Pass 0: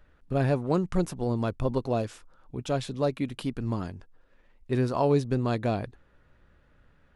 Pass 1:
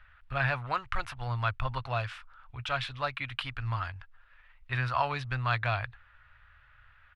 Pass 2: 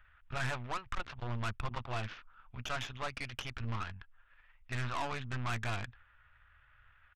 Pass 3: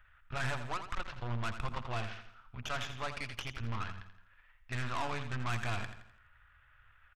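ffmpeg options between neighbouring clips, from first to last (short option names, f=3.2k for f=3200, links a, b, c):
-af "firequalizer=gain_entry='entry(120,0);entry(170,-27);entry(260,-20);entry(380,-23);entry(670,-4);entry(1300,10);entry(2700,9);entry(6700,-12)':delay=0.05:min_phase=1"
-af "aresample=8000,asoftclip=type=tanh:threshold=-28dB,aresample=44100,aeval=exprs='0.0668*(cos(1*acos(clip(val(0)/0.0668,-1,1)))-cos(1*PI/2))+0.0075*(cos(3*acos(clip(val(0)/0.0668,-1,1)))-cos(3*PI/2))+0.00944*(cos(6*acos(clip(val(0)/0.0668,-1,1)))-cos(6*PI/2))':c=same,volume=-1.5dB"
-af "aecho=1:1:84|168|252|336|420:0.316|0.139|0.0612|0.0269|0.0119"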